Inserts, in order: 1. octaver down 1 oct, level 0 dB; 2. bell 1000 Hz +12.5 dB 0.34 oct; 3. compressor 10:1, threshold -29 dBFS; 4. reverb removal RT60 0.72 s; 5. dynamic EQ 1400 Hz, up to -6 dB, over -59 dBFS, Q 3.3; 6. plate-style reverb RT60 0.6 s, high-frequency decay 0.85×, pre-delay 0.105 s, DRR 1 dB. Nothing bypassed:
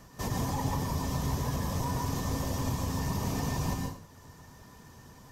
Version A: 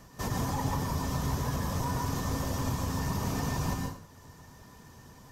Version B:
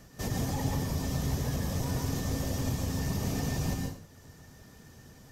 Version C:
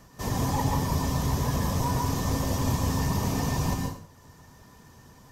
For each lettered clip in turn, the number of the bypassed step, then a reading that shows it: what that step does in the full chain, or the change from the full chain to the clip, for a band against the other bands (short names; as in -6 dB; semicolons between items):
5, 2 kHz band +2.0 dB; 2, 1 kHz band -6.5 dB; 3, mean gain reduction 3.0 dB